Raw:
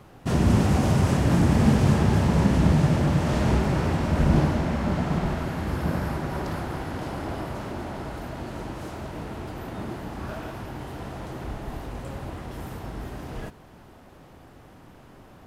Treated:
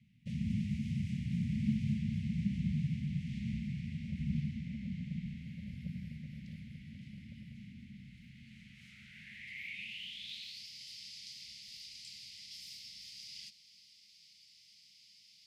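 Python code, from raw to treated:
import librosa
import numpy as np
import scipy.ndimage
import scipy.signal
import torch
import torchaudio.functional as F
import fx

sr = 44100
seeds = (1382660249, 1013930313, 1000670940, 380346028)

y = scipy.signal.sosfilt(scipy.signal.cheby1(5, 1.0, [220.0, 2100.0], 'bandstop', fs=sr, output='sos'), x)
y = fx.dynamic_eq(y, sr, hz=620.0, q=0.8, threshold_db=-43.0, ratio=4.0, max_db=-7)
y = fx.filter_sweep_bandpass(y, sr, from_hz=570.0, to_hz=4900.0, start_s=7.95, end_s=10.66, q=6.3)
y = F.gain(torch.from_numpy(y), 14.5).numpy()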